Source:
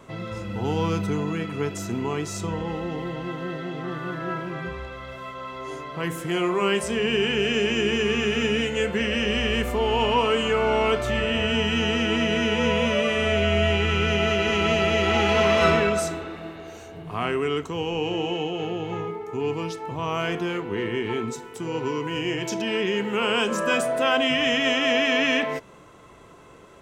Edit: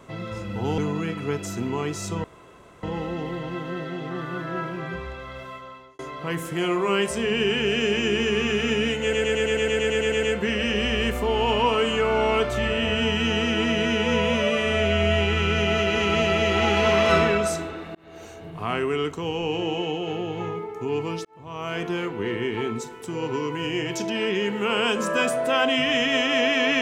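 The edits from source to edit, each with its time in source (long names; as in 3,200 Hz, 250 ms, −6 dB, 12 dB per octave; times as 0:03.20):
0:00.78–0:01.10: remove
0:02.56: splice in room tone 0.59 s
0:05.15–0:05.72: fade out
0:08.75: stutter 0.11 s, 12 plays
0:16.47–0:16.76: fade in
0:19.77–0:20.45: fade in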